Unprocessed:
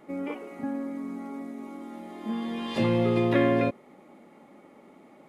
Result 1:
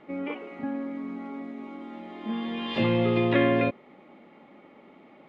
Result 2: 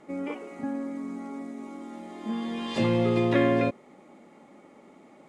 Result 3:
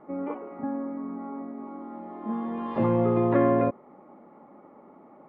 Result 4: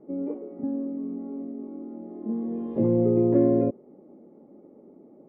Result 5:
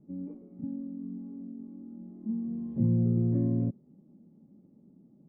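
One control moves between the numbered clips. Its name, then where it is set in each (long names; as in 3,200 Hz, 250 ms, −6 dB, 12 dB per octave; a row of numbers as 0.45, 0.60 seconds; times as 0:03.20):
low-pass with resonance, frequency: 3,100, 7,800, 1,100, 430, 170 Hertz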